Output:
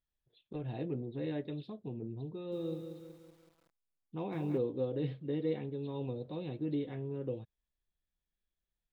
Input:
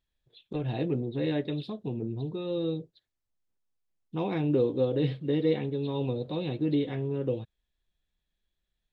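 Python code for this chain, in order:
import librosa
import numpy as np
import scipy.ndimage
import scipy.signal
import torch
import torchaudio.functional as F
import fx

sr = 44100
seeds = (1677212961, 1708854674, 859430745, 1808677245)

y = fx.high_shelf(x, sr, hz=3700.0, db=-9.5)
y = fx.echo_crushed(y, sr, ms=187, feedback_pct=55, bits=9, wet_db=-7.5, at=(2.33, 4.58))
y = F.gain(torch.from_numpy(y), -8.0).numpy()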